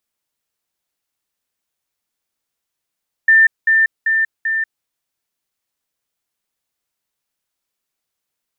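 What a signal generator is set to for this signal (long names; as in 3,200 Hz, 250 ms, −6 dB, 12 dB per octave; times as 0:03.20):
level staircase 1,790 Hz −6.5 dBFS, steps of −3 dB, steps 4, 0.19 s 0.20 s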